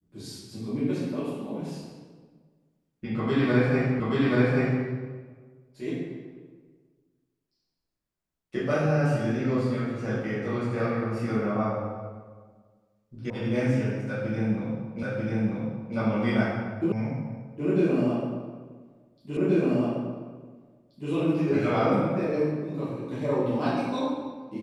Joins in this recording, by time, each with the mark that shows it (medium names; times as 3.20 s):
4.00 s: repeat of the last 0.83 s
13.30 s: sound stops dead
15.03 s: repeat of the last 0.94 s
16.92 s: sound stops dead
19.37 s: repeat of the last 1.73 s